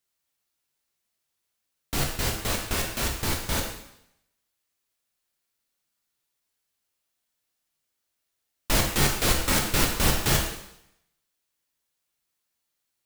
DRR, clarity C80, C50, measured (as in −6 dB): 0.5 dB, 7.5 dB, 5.0 dB